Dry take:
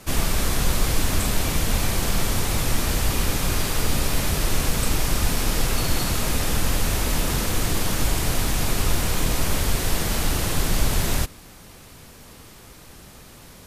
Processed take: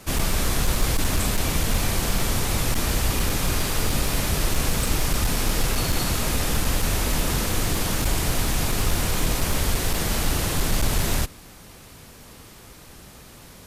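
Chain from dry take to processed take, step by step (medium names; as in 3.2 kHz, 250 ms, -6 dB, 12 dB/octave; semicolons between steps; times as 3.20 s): one-sided clip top -14 dBFS, bottom -11.5 dBFS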